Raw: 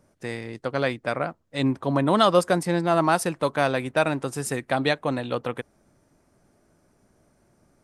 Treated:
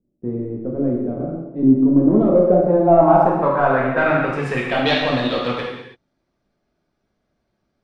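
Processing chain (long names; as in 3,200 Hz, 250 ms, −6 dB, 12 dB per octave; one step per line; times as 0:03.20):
leveller curve on the samples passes 3
low-pass filter sweep 320 Hz → 3,900 Hz, 0:01.89–0:05.06
reverb whose tail is shaped and stops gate 360 ms falling, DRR −4 dB
level −9 dB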